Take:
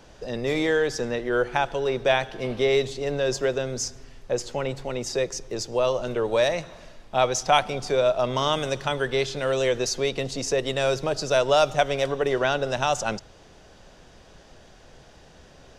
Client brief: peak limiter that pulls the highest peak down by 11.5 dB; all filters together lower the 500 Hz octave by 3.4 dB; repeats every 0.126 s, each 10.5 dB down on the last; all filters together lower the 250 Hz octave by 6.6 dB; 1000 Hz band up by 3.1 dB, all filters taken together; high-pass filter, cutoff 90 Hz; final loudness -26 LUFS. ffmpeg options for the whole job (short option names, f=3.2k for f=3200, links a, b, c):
-af "highpass=90,equalizer=f=250:t=o:g=-8,equalizer=f=500:t=o:g=-4.5,equalizer=f=1k:t=o:g=7,alimiter=limit=-15dB:level=0:latency=1,aecho=1:1:126|252|378:0.299|0.0896|0.0269,volume=2dB"